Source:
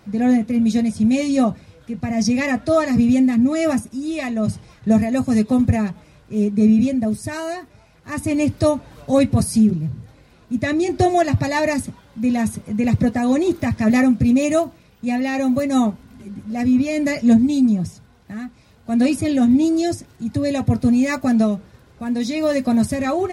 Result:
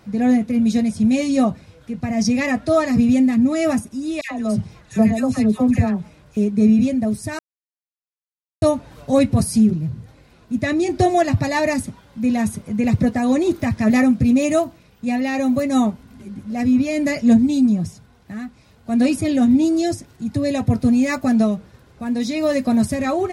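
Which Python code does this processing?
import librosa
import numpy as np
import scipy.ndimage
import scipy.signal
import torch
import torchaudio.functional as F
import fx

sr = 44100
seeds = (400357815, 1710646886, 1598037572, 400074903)

y = fx.dispersion(x, sr, late='lows', ms=101.0, hz=1400.0, at=(4.21, 6.37))
y = fx.edit(y, sr, fx.silence(start_s=7.39, length_s=1.23), tone=tone)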